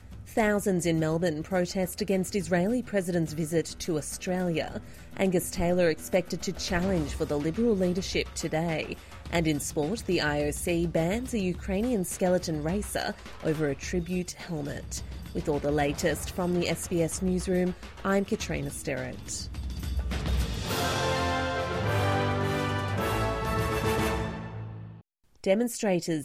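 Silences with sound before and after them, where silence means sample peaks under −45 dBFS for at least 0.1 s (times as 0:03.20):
0:25.00–0:25.44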